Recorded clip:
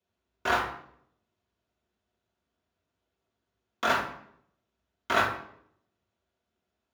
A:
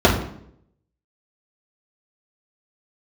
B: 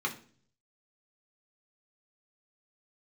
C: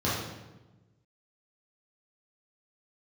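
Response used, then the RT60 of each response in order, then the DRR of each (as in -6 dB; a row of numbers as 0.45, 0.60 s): A; 0.70, 0.45, 1.1 s; -7.0, -0.5, -10.0 dB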